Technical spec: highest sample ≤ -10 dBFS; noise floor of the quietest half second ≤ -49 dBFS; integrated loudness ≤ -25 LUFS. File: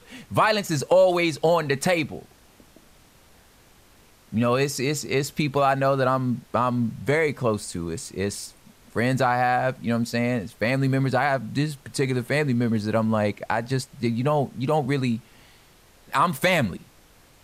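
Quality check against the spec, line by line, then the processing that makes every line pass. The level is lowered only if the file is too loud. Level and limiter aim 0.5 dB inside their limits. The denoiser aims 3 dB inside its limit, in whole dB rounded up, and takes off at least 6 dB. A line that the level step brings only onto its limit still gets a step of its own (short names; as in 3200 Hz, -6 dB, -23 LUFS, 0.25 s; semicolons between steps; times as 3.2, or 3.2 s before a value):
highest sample -7.0 dBFS: fail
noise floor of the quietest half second -54 dBFS: OK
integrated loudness -24.0 LUFS: fail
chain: gain -1.5 dB; limiter -10.5 dBFS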